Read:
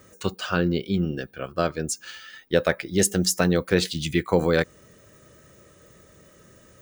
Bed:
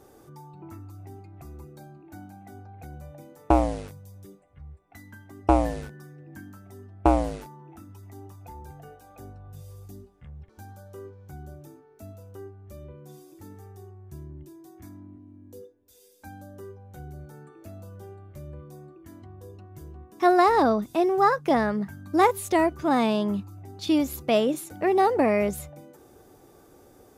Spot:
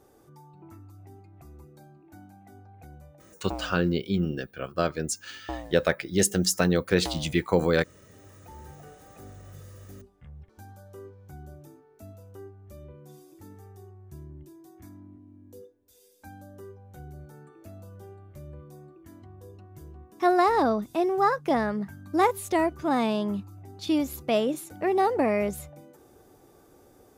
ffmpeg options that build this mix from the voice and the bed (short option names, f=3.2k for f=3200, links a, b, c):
-filter_complex "[0:a]adelay=3200,volume=-2dB[a];[1:a]volume=8dB,afade=t=out:st=2.91:d=0.54:silence=0.298538,afade=t=in:st=8.08:d=0.58:silence=0.211349[b];[a][b]amix=inputs=2:normalize=0"